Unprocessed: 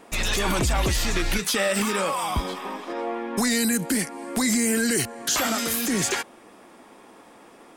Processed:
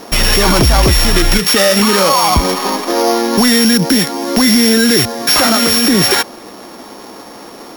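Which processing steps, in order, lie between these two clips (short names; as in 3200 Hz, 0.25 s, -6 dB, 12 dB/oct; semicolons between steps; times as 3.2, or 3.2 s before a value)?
sample sorter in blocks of 8 samples; maximiser +17.5 dB; gain -1 dB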